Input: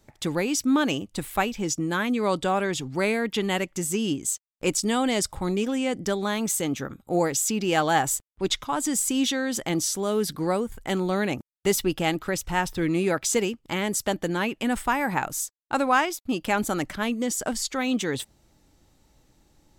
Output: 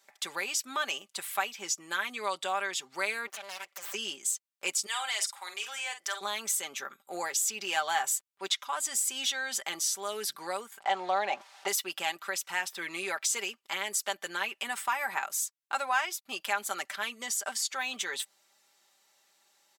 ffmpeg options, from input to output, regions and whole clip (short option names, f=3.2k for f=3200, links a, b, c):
-filter_complex "[0:a]asettb=1/sr,asplit=3[a][b][c];[a]atrim=end=3.274[d];[b]atrim=start=3.27:end=3.94,asetpts=PTS-STARTPTS,afade=t=in:d=0.004:c=qsin,afade=t=out:st=0.666:d=0.004:c=qsin,acompressor=threshold=-35dB:ratio=2.5:attack=3.2:release=140:knee=1:detection=peak,aeval=exprs='abs(val(0))':c=same[e];[c]atrim=start=3.936[f];[d][e]acrossfade=d=0.004:c1=hsin:c2=qsin[g];[g][f]acrossfade=d=0.004:c1=qsin:c2=hsin,asettb=1/sr,asplit=3[h][i][j];[h]atrim=end=4.864[k];[i]atrim=start=4.86:end=6.21,asetpts=PTS-STARTPTS,afade=t=in:d=0.004:c=qsin,afade=t=out:st=1.346:d=0.004:c=qsin,highpass=900,asplit=2[l][m];[m]adelay=48,volume=-10dB[n];[l][n]amix=inputs=2:normalize=0,atrim=end_sample=59535[o];[j]atrim=start=6.206[p];[k][o]acrossfade=d=0.004:c1=hsin:c2=qsin[q];[q][p]acrossfade=d=0.004:c1=qsin:c2=hsin,asettb=1/sr,asplit=3[r][s][t];[r]atrim=end=10.794[u];[s]atrim=start=10.79:end=11.68,asetpts=PTS-STARTPTS,afade=t=in:d=0.004:c=qsin,afade=t=out:st=0.886:d=0.004:c=qsin,aeval=exprs='val(0)+0.5*0.0112*sgn(val(0))':c=same,lowpass=5.1k,equalizer=f=770:t=o:w=0.88:g=15[v];[t]atrim=start=11.676[w];[u][v]acrossfade=d=0.004:c1=hsin:c2=qsin[x];[x][w]acrossfade=d=0.004:c1=qsin:c2=hsin,highpass=1k,aecho=1:1:5.1:0.65,acompressor=threshold=-34dB:ratio=1.5"